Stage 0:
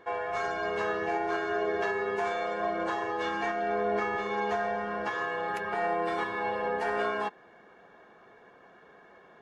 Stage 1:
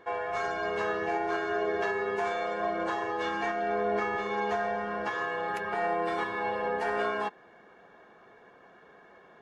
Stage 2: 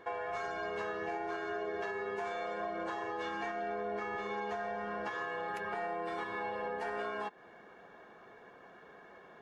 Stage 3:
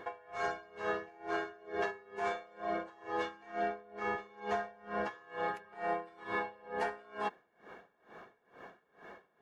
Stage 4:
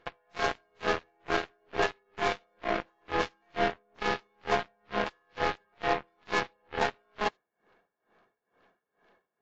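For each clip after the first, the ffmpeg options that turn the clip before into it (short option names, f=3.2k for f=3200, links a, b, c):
-af anull
-af "acompressor=threshold=-36dB:ratio=4"
-af "aeval=exprs='val(0)*pow(10,-26*(0.5-0.5*cos(2*PI*2.2*n/s))/20)':c=same,volume=5.5dB"
-af "aeval=exprs='0.0841*(cos(1*acos(clip(val(0)/0.0841,-1,1)))-cos(1*PI/2))+0.0106*(cos(2*acos(clip(val(0)/0.0841,-1,1)))-cos(2*PI/2))+0.00422*(cos(6*acos(clip(val(0)/0.0841,-1,1)))-cos(6*PI/2))+0.0133*(cos(7*acos(clip(val(0)/0.0841,-1,1)))-cos(7*PI/2))+0.00188*(cos(8*acos(clip(val(0)/0.0841,-1,1)))-cos(8*PI/2))':c=same,volume=7.5dB" -ar 16000 -c:a aac -b:a 64k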